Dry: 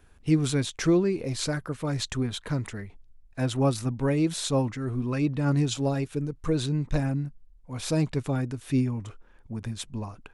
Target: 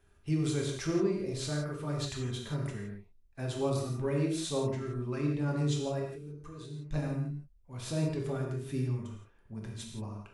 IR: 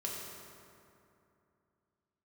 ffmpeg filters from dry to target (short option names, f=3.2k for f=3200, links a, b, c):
-filter_complex "[0:a]asettb=1/sr,asplit=3[a][b][c];[a]atrim=end=5.994[d];[b]atrim=start=5.99:end=6.91,asetpts=PTS-STARTPTS,afade=t=in:d=0.004:c=qsin,afade=t=out:st=0.916:d=0.004:c=qsin,acompressor=threshold=-40dB:ratio=3[e];[c]atrim=start=6.906[f];[d][e]acrossfade=d=0.004:c1=hsin:c2=qsin[g];[g][f]acrossfade=d=0.004:c1=qsin:c2=hsin[h];[1:a]atrim=start_sample=2205,afade=t=out:st=0.23:d=0.01,atrim=end_sample=10584[i];[h][i]afir=irnorm=-1:irlink=0,volume=-7dB"